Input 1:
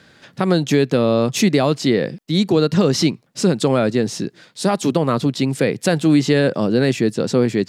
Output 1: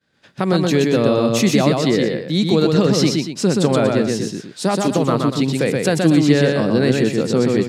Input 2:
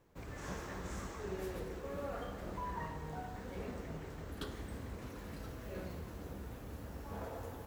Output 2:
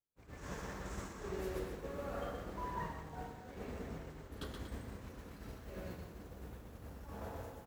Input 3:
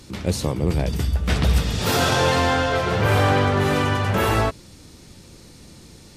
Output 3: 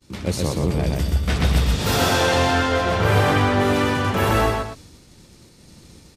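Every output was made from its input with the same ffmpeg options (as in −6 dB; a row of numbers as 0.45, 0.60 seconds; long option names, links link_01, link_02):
-af "aecho=1:1:125.4|239.1:0.708|0.282,agate=range=-33dB:threshold=-38dB:ratio=3:detection=peak,volume=-1dB"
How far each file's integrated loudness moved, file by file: +1.0, −1.5, +0.5 LU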